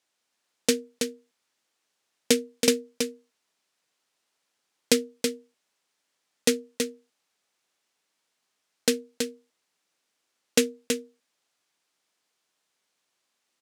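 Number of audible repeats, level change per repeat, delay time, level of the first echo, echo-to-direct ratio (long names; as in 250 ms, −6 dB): 1, repeats not evenly spaced, 326 ms, −6.0 dB, −6.0 dB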